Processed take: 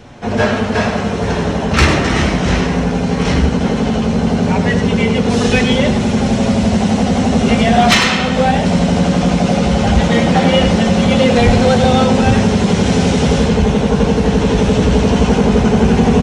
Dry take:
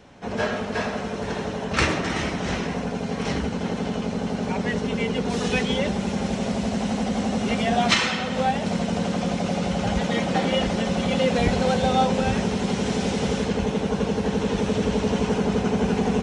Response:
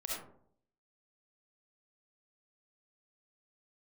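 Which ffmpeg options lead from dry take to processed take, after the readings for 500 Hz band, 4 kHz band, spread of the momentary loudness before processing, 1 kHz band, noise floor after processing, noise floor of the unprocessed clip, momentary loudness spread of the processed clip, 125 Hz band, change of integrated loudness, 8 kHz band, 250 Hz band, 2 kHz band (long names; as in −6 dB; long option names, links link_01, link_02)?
+10.0 dB, +9.5 dB, 6 LU, +9.5 dB, −18 dBFS, −30 dBFS, 5 LU, +13.5 dB, +11.0 dB, +9.5 dB, +11.5 dB, +9.5 dB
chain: -af "lowshelf=frequency=130:gain=8,flanger=delay=8.2:depth=7.9:regen=-41:speed=0.17:shape=sinusoidal,aeval=exprs='0.376*sin(PI/2*1.78*val(0)/0.376)':channel_layout=same,aecho=1:1:99:0.299,volume=5dB"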